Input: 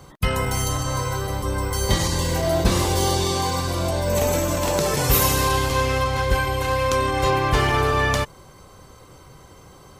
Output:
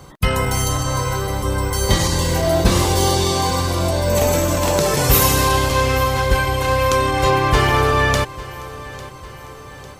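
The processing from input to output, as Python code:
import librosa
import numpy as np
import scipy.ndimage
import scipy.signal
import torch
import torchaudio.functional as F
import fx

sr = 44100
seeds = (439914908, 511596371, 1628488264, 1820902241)

y = fx.echo_feedback(x, sr, ms=850, feedback_pct=54, wet_db=-18)
y = y * 10.0 ** (4.0 / 20.0)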